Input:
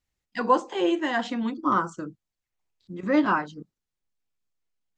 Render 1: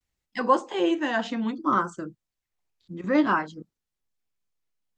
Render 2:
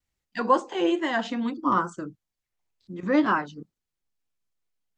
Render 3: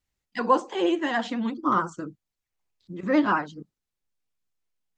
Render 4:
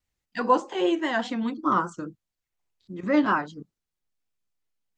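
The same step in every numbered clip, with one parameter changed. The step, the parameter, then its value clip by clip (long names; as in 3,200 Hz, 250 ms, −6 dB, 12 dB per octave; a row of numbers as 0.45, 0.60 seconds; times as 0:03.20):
pitch vibrato, speed: 0.63, 2.2, 14, 4.9 Hertz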